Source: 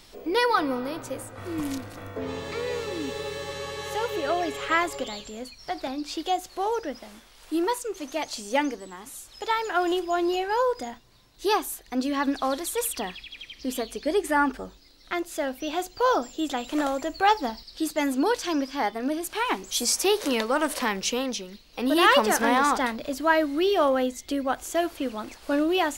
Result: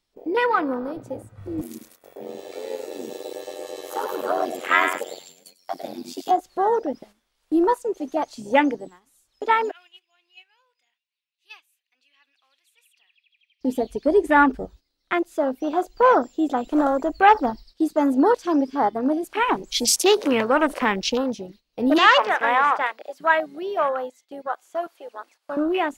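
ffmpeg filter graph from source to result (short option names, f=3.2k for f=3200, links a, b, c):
-filter_complex "[0:a]asettb=1/sr,asplit=3[a][b][c];[a]atrim=end=1.614[d];[b]atrim=start=1.61:end=6.31,asetpts=PTS-STARTPTS,afade=t=in:d=0.004:c=qsin,afade=t=out:st=4.696:d=0.004:c=qsin,aemphasis=mode=production:type=riaa,aecho=1:1:102|204|306|408:0.501|0.16|0.0513|0.0164,atrim=end_sample=207270,aeval=exprs='val(0)*sin(2*PI*45*n/s)':c=same[e];[c]atrim=start=6.306[f];[d][e]acrossfade=d=0.004:c1=hsin:c2=qsin[g];[g][f]acrossfade=d=0.004:c1=qsin:c2=hsin,asettb=1/sr,asplit=3[h][i][j];[h]atrim=end=9.714[k];[i]atrim=start=9.71:end=13.61,asetpts=PTS-STARTPTS,afade=t=in:d=0.004:c=qsin,afade=t=out:st=3.896:d=0.004:c=qsin,bandpass=f=2.6k:t=q:w=4.6,aemphasis=mode=production:type=bsi[l];[j]atrim=start=13.606[m];[k][l]acrossfade=d=0.004:c1=hsin:c2=qsin[n];[n][m]acrossfade=d=0.004:c1=qsin:c2=hsin,asettb=1/sr,asplit=3[o][p][q];[o]atrim=end=21.984[r];[p]atrim=start=21.98:end=25.57,asetpts=PTS-STARTPTS,afade=t=in:d=0.004:c=qsin,afade=t=out:st=3.586:d=0.004:c=qsin,highpass=660,acrossover=split=4100[s][t];[t]acompressor=threshold=-41dB:ratio=4:attack=1:release=60[u];[s][u]amix=inputs=2:normalize=0[v];[q]atrim=start=25.566[w];[r][v]acrossfade=d=0.004:c1=hsin:c2=qsin[x];[x][w]acrossfade=d=0.004:c1=qsin:c2=hsin,afwtdn=0.0316,agate=range=-11dB:threshold=-53dB:ratio=16:detection=peak,dynaudnorm=f=330:g=17:m=5dB,volume=2dB"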